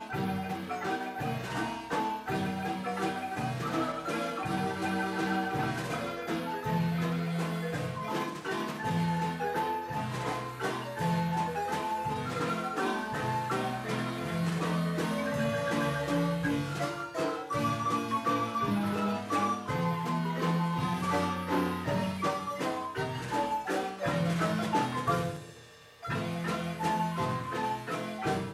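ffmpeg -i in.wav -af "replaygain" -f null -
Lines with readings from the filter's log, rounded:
track_gain = +14.3 dB
track_peak = 0.102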